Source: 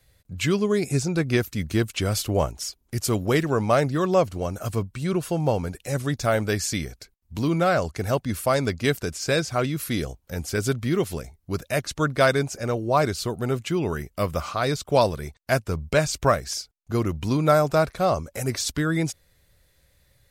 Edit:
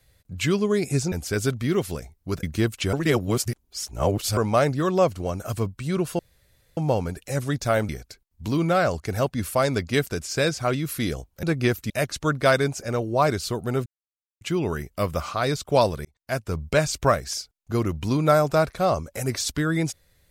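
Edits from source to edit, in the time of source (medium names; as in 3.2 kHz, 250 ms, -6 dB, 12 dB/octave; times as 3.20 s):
1.12–1.59 s: swap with 10.34–11.65 s
2.09–3.53 s: reverse
5.35 s: insert room tone 0.58 s
6.47–6.80 s: delete
13.61 s: insert silence 0.55 s
15.25–15.77 s: fade in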